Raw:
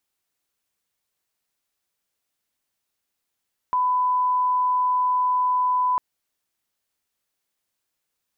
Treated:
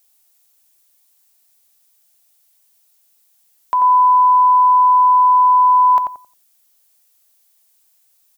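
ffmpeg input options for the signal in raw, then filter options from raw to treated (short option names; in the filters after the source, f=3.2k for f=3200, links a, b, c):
-f lavfi -i "sine=f=1000:d=2.25:r=44100,volume=0.06dB"
-filter_complex "[0:a]equalizer=f=710:t=o:w=0.66:g=9.5,crystalizer=i=7.5:c=0,asplit=2[a][b];[b]adelay=89,lowpass=f=1.1k:p=1,volume=-3.5dB,asplit=2[c][d];[d]adelay=89,lowpass=f=1.1k:p=1,volume=0.29,asplit=2[e][f];[f]adelay=89,lowpass=f=1.1k:p=1,volume=0.29,asplit=2[g][h];[h]adelay=89,lowpass=f=1.1k:p=1,volume=0.29[i];[c][e][g][i]amix=inputs=4:normalize=0[j];[a][j]amix=inputs=2:normalize=0"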